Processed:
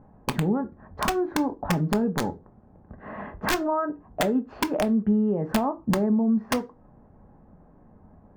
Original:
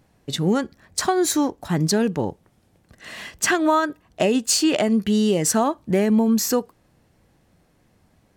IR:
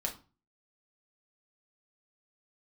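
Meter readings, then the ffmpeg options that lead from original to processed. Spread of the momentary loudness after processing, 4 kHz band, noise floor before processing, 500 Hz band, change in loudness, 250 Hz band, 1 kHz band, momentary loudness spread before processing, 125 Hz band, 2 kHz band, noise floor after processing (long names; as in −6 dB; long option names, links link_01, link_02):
10 LU, −9.0 dB, −62 dBFS, −5.5 dB, −5.0 dB, −3.5 dB, −4.0 dB, 10 LU, −2.5 dB, −5.0 dB, −55 dBFS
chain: -filter_complex "[0:a]lowpass=frequency=1200:width=0.5412,lowpass=frequency=1200:width=1.3066,acompressor=threshold=-29dB:ratio=8,aeval=exprs='(mod(14.1*val(0)+1,2)-1)/14.1':channel_layout=same,asplit=2[link_01][link_02];[1:a]atrim=start_sample=2205,asetrate=61740,aresample=44100[link_03];[link_02][link_03]afir=irnorm=-1:irlink=0,volume=-2dB[link_04];[link_01][link_04]amix=inputs=2:normalize=0,volume=3.5dB"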